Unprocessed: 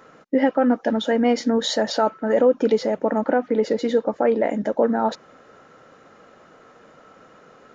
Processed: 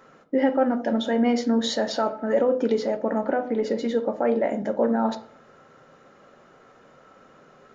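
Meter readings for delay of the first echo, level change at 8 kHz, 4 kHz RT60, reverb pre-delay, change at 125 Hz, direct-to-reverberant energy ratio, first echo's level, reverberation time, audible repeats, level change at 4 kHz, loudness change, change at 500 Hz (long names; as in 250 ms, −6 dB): no echo audible, can't be measured, 0.35 s, 5 ms, can't be measured, 7.5 dB, no echo audible, 0.50 s, no echo audible, −3.5 dB, −3.0 dB, −3.5 dB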